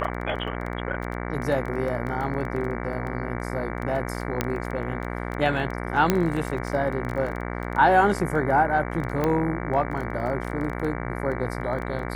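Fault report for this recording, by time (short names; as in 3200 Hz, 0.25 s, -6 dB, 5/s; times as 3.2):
buzz 60 Hz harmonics 38 -31 dBFS
crackle 12/s -29 dBFS
4.41 pop -8 dBFS
6.1 pop -6 dBFS
9.24 pop -12 dBFS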